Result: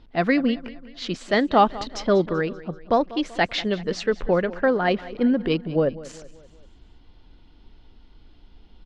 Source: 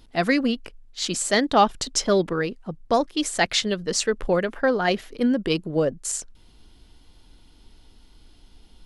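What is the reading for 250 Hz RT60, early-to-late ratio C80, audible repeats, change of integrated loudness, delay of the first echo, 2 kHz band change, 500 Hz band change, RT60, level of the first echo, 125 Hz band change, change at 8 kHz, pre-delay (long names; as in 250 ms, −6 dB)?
no reverb audible, no reverb audible, 3, +0.5 dB, 192 ms, −0.5 dB, +1.0 dB, no reverb audible, −18.0 dB, +1.5 dB, −17.0 dB, no reverb audible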